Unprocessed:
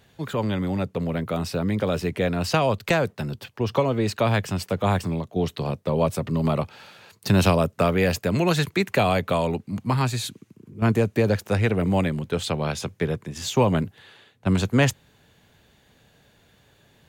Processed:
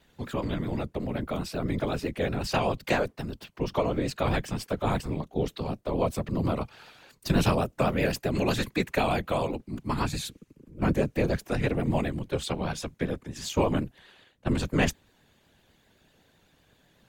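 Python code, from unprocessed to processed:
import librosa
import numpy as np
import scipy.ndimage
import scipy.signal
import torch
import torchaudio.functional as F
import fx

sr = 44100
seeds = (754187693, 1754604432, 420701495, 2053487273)

y = fx.whisperise(x, sr, seeds[0])
y = fx.vibrato(y, sr, rate_hz=7.9, depth_cents=62.0)
y = y * librosa.db_to_amplitude(-5.0)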